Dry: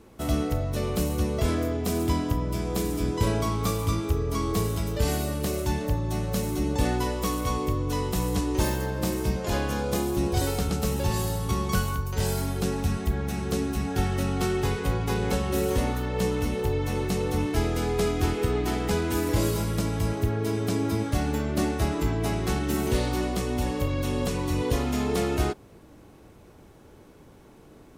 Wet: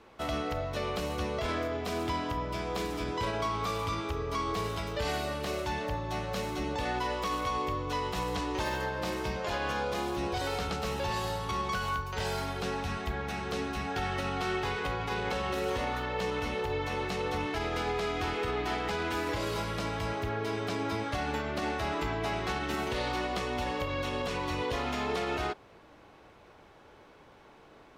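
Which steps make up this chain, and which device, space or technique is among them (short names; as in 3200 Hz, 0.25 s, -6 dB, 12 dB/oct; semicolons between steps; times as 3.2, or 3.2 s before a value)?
DJ mixer with the lows and highs turned down (three-band isolator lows -13 dB, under 550 Hz, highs -18 dB, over 4800 Hz; limiter -26 dBFS, peak gain reduction 7.5 dB); gain +3 dB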